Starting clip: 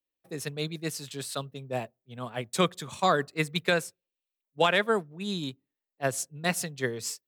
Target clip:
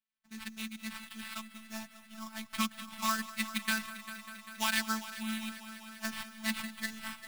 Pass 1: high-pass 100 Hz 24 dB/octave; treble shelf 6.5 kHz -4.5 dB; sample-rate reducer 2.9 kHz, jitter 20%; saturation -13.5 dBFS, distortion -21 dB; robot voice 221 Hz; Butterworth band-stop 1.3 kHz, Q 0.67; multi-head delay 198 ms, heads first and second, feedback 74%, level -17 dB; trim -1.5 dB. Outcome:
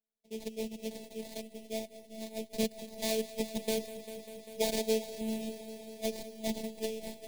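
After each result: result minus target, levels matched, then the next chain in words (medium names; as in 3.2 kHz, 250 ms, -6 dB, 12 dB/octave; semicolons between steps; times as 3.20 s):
500 Hz band +19.0 dB; saturation: distortion +17 dB; sample-rate reducer: distortion +6 dB
high-pass 100 Hz 24 dB/octave; treble shelf 6.5 kHz -4.5 dB; sample-rate reducer 2.9 kHz, jitter 20%; saturation -13.5 dBFS, distortion -21 dB; robot voice 221 Hz; Butterworth band-stop 500 Hz, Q 0.67; multi-head delay 198 ms, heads first and second, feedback 74%, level -17 dB; trim -1.5 dB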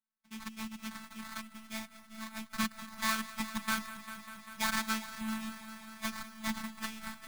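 saturation: distortion +17 dB; sample-rate reducer: distortion +6 dB
high-pass 100 Hz 24 dB/octave; treble shelf 6.5 kHz -4.5 dB; sample-rate reducer 2.9 kHz, jitter 20%; saturation -3.5 dBFS, distortion -39 dB; robot voice 221 Hz; Butterworth band-stop 500 Hz, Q 0.67; multi-head delay 198 ms, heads first and second, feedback 74%, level -17 dB; trim -1.5 dB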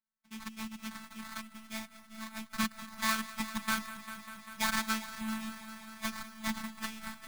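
sample-rate reducer: distortion +6 dB
high-pass 100 Hz 24 dB/octave; treble shelf 6.5 kHz -4.5 dB; sample-rate reducer 6.4 kHz, jitter 20%; saturation -3.5 dBFS, distortion -38 dB; robot voice 221 Hz; Butterworth band-stop 500 Hz, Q 0.67; multi-head delay 198 ms, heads first and second, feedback 74%, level -17 dB; trim -1.5 dB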